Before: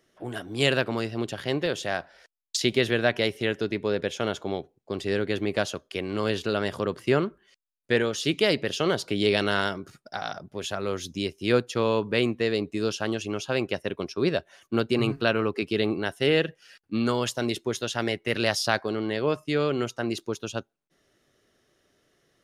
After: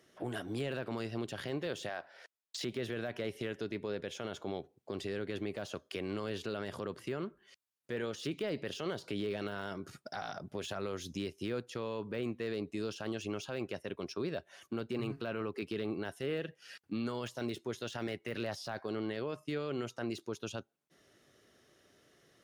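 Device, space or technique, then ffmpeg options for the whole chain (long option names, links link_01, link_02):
podcast mastering chain: -filter_complex "[0:a]asettb=1/sr,asplit=3[link_01][link_02][link_03];[link_01]atrim=end=1.894[link_04];[link_02]atrim=start=1.89:end=2.62,asetpts=PTS-STARTPTS,afade=type=in:duration=0.004:curve=qsin,afade=type=out:start_time=0.726:duration=0.004:curve=qsin,bass=frequency=250:gain=-12,treble=frequency=4000:gain=-5[link_05];[link_03]atrim=start=2.616[link_06];[link_04][link_05]acrossfade=duration=0.004:curve1=hsin:curve2=qsin[link_07];[link_07][link_06]acrossfade=duration=0.004:curve1=qsin:curve2=hsin,highpass=61,deesser=0.9,acompressor=threshold=-39dB:ratio=2.5,alimiter=level_in=5.5dB:limit=-24dB:level=0:latency=1:release=12,volume=-5.5dB,volume=2dB" -ar 48000 -c:a libmp3lame -b:a 128k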